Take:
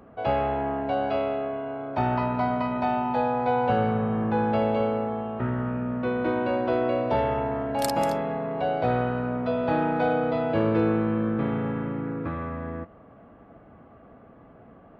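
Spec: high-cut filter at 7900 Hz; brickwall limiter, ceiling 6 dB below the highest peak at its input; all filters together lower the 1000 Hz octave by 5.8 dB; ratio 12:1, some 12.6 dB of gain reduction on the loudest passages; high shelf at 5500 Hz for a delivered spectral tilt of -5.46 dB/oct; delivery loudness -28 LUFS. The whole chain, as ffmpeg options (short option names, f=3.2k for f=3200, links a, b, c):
-af "lowpass=7.9k,equalizer=f=1k:t=o:g=-8,highshelf=f=5.5k:g=-8.5,acompressor=threshold=-33dB:ratio=12,volume=10.5dB,alimiter=limit=-19dB:level=0:latency=1"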